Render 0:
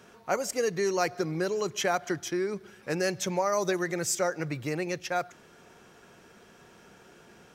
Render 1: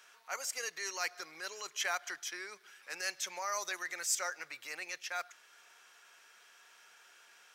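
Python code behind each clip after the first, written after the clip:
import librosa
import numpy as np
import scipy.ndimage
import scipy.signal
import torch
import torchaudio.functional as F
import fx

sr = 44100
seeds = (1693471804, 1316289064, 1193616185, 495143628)

y = scipy.signal.sosfilt(scipy.signal.butter(2, 1400.0, 'highpass', fs=sr, output='sos'), x)
y = fx.transient(y, sr, attack_db=-6, sustain_db=-1)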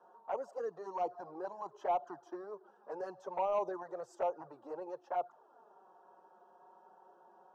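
y = scipy.signal.sosfilt(scipy.signal.ellip(3, 1.0, 40, [120.0, 900.0], 'bandpass', fs=sr, output='sos'), x)
y = 10.0 ** (-35.0 / 20.0) * np.tanh(y / 10.0 ** (-35.0 / 20.0))
y = fx.env_flanger(y, sr, rest_ms=6.1, full_db=-42.5)
y = y * librosa.db_to_amplitude(14.5)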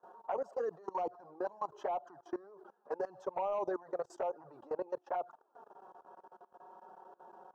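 y = fx.high_shelf(x, sr, hz=4900.0, db=-6.0)
y = fx.level_steps(y, sr, step_db=21)
y = y * librosa.db_to_amplitude(8.0)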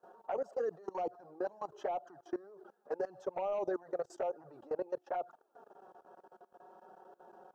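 y = fx.peak_eq(x, sr, hz=1000.0, db=-9.5, octaves=0.47)
y = y * librosa.db_to_amplitude(1.5)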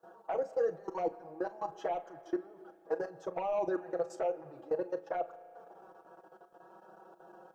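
y = x + 0.69 * np.pad(x, (int(6.1 * sr / 1000.0), 0))[:len(x)]
y = fx.room_early_taps(y, sr, ms=(34, 45), db=(-15.5, -17.5))
y = fx.rev_spring(y, sr, rt60_s=2.9, pass_ms=(35,), chirp_ms=65, drr_db=16.0)
y = y * librosa.db_to_amplitude(1.5)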